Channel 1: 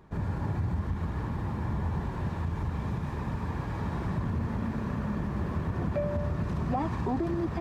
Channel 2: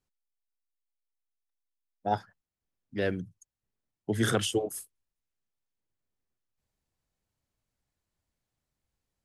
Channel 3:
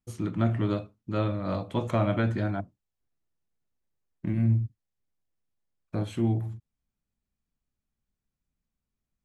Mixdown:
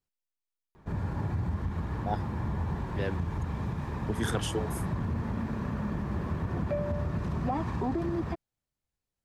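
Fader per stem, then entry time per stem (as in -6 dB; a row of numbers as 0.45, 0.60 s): -1.0 dB, -5.0 dB, off; 0.75 s, 0.00 s, off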